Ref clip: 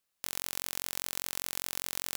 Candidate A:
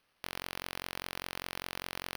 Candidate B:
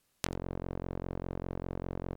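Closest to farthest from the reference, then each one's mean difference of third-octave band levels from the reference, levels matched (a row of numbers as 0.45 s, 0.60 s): A, B; 7.0 dB, 20.0 dB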